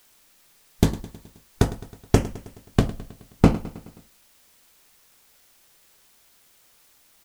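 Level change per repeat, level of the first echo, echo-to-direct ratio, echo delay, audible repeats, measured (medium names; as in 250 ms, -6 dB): -4.5 dB, -17.0 dB, -15.5 dB, 106 ms, 4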